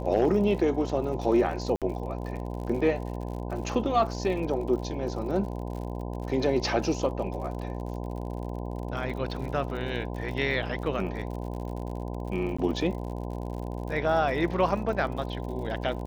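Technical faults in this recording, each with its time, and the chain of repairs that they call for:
buzz 60 Hz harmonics 17 -34 dBFS
crackle 59 per s -37 dBFS
1.76–1.82 s: dropout 57 ms
12.57–12.59 s: dropout 15 ms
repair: de-click; de-hum 60 Hz, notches 17; interpolate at 1.76 s, 57 ms; interpolate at 12.57 s, 15 ms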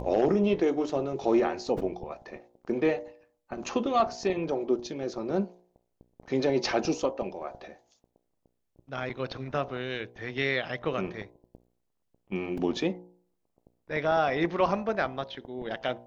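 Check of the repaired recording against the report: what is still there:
nothing left

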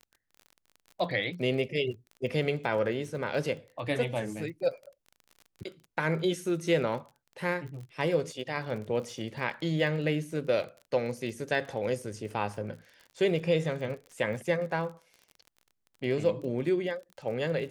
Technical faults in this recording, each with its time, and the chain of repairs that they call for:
crackle 34 per s -40 dBFS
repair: de-click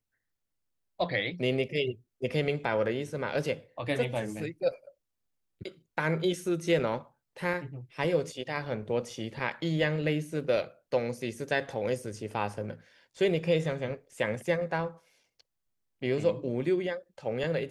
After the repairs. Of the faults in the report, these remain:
nothing left

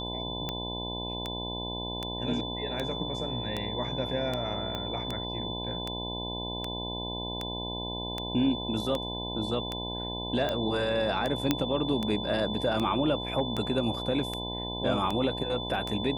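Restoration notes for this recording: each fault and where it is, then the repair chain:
buzz 60 Hz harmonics 17 -37 dBFS
tick 78 rpm -17 dBFS
whine 3.5 kHz -36 dBFS
4.75 s: pop -20 dBFS
11.51 s: pop -9 dBFS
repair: de-click; de-hum 60 Hz, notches 17; band-stop 3.5 kHz, Q 30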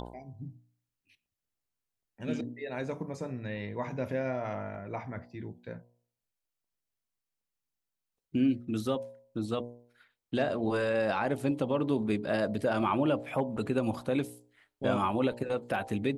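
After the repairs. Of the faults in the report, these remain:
4.75 s: pop

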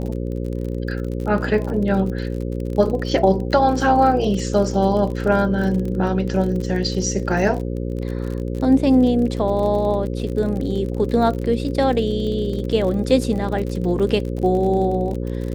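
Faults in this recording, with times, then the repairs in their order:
buzz 60 Hz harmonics 9 -25 dBFS
crackle 42 per s -27 dBFS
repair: de-click; de-hum 60 Hz, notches 9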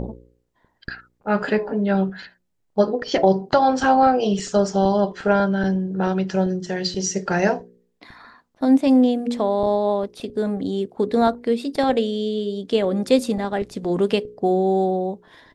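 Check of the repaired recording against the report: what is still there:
nothing left

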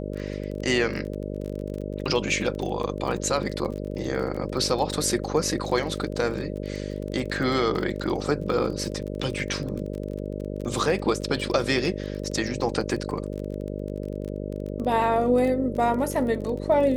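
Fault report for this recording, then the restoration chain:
buzz 50 Hz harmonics 12 -32 dBFS
crackle 30 per s -31 dBFS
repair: de-click; de-hum 50 Hz, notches 12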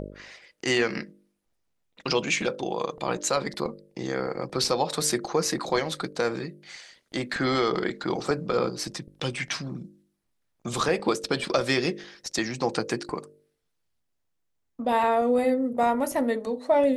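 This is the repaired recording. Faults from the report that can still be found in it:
nothing left

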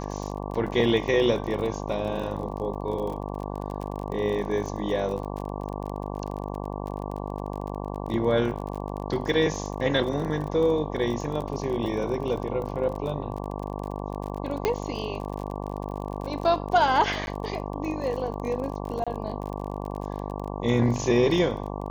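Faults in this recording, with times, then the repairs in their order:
buzz 50 Hz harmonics 23 -33 dBFS
crackle 38 per s -33 dBFS
14.65 s: pop -10 dBFS
17.26–17.27 s: dropout 11 ms
19.04–19.07 s: dropout 26 ms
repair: de-click; de-hum 50 Hz, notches 23; interpolate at 17.26 s, 11 ms; interpolate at 19.04 s, 26 ms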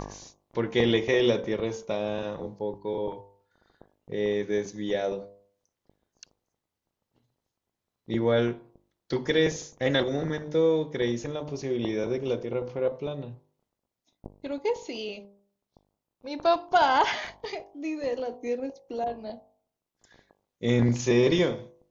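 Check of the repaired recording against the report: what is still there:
nothing left

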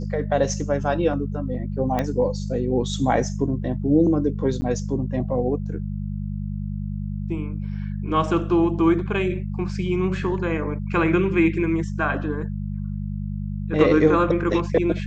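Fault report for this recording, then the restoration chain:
hum 50 Hz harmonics 4 -28 dBFS
1.99 s: pop -11 dBFS
4.61–4.62 s: dropout 10 ms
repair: de-click; de-hum 50 Hz, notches 4; interpolate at 4.61 s, 10 ms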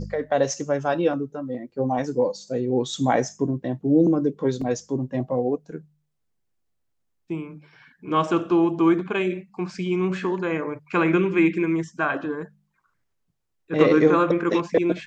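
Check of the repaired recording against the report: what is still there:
1.99 s: pop

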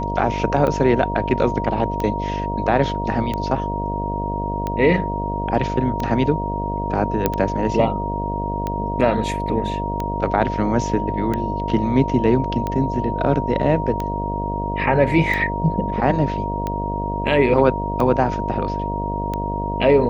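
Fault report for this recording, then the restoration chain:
buzz 50 Hz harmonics 14 -26 dBFS
tick 45 rpm -12 dBFS
whine 940 Hz -25 dBFS
7.26 s: pop -4 dBFS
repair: de-click; de-hum 50 Hz, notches 14; band-stop 940 Hz, Q 30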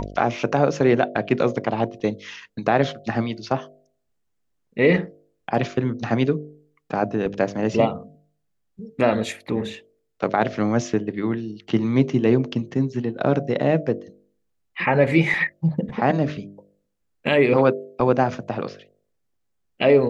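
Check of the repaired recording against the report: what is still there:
nothing left

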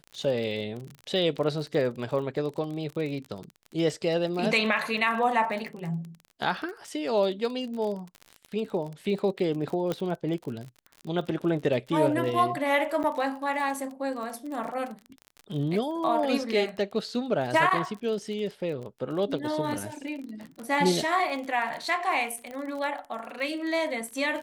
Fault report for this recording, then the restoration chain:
crackle 37 per s -34 dBFS
9.92 s: pop -16 dBFS
13.03–13.04 s: dropout 8.6 ms
22.51 s: pop -26 dBFS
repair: de-click; interpolate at 13.03 s, 8.6 ms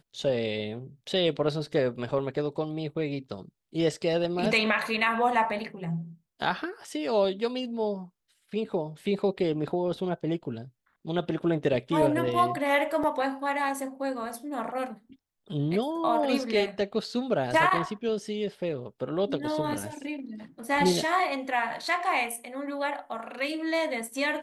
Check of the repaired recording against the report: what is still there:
nothing left

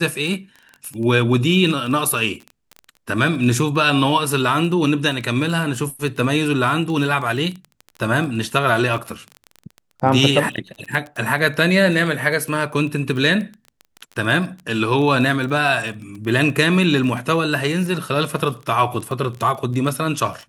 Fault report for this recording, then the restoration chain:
crackle 20 per s -26 dBFS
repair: de-click

